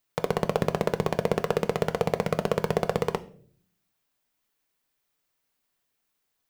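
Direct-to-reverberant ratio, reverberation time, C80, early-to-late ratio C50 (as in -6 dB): 10.0 dB, 0.55 s, 22.5 dB, 18.5 dB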